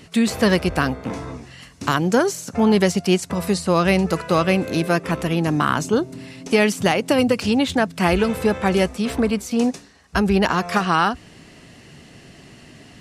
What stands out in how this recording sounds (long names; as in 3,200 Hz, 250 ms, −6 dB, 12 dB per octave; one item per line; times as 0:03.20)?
background noise floor −46 dBFS
spectral slope −5.5 dB per octave